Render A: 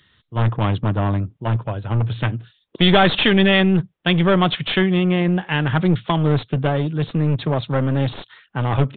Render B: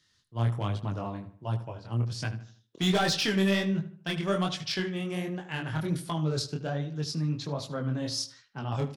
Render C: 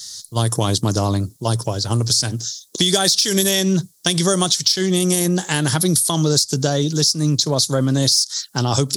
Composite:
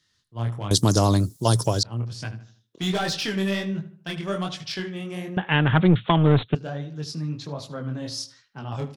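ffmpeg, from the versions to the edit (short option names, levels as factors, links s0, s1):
-filter_complex "[1:a]asplit=3[s0][s1][s2];[s0]atrim=end=0.712[s3];[2:a]atrim=start=0.708:end=1.832[s4];[s1]atrim=start=1.828:end=5.372[s5];[0:a]atrim=start=5.368:end=6.552[s6];[s2]atrim=start=6.548[s7];[s3][s4]acrossfade=d=0.004:c1=hsin:c2=hsin[s8];[s8][s5]acrossfade=d=0.004:c1=hsin:c2=hsin[s9];[s9][s6]acrossfade=d=0.004:c1=hsin:c2=hsin[s10];[s10][s7]acrossfade=d=0.004:c1=hsin:c2=hsin"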